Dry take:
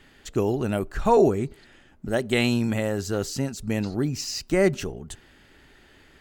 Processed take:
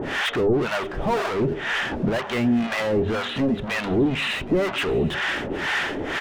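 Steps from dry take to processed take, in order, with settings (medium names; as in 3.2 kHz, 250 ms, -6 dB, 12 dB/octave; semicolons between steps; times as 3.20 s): resampled via 8 kHz; upward compressor, threshold -25 dBFS; overdrive pedal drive 37 dB, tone 1.7 kHz, clips at -13.5 dBFS; harmonic tremolo 2 Hz, depth 100%, crossover 680 Hz; hum notches 50/100/150/200 Hz; on a send: shuffle delay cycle 767 ms, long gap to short 3:1, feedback 31%, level -19 dB; on the sum: trim +2.5 dB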